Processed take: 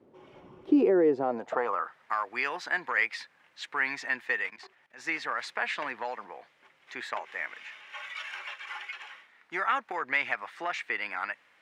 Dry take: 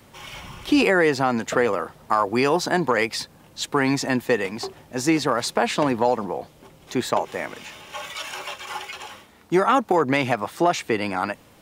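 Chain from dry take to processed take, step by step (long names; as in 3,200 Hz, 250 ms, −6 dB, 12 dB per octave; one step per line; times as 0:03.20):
band-pass filter sweep 370 Hz → 1,900 Hz, 0:01.11–0:02.01
0:04.50–0:05.07: output level in coarse steps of 16 dB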